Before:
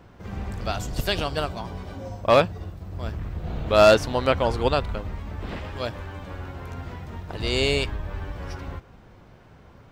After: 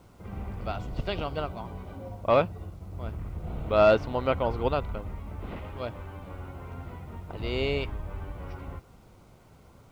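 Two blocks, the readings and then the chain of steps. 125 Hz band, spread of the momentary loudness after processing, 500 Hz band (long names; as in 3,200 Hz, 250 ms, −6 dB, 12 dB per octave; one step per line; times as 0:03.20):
−4.5 dB, 17 LU, −4.5 dB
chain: low-pass filter 2,500 Hz 12 dB per octave
bit reduction 10 bits
notch filter 1,700 Hz, Q 5.4
level −4.5 dB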